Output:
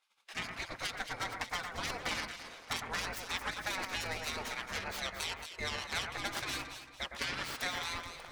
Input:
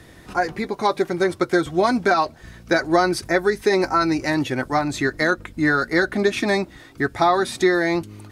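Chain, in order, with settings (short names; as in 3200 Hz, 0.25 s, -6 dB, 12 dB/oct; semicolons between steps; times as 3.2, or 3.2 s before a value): tracing distortion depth 0.25 ms; LPF 3200 Hz 6 dB/oct; spectral gate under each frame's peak -20 dB weak; gate -57 dBFS, range -25 dB; compressor 2:1, threshold -42 dBFS, peak gain reduction 10 dB; echo with dull and thin repeats by turns 0.112 s, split 2100 Hz, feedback 59%, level -4.5 dB; gain +2 dB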